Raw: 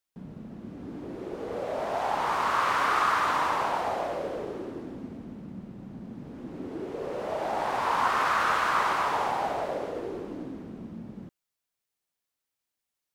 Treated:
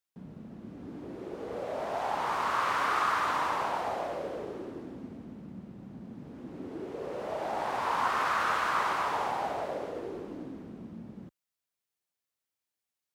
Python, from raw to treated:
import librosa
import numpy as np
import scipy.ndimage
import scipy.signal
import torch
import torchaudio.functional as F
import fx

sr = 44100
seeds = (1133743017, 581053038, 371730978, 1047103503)

y = scipy.signal.sosfilt(scipy.signal.butter(2, 44.0, 'highpass', fs=sr, output='sos'), x)
y = y * 10.0 ** (-3.5 / 20.0)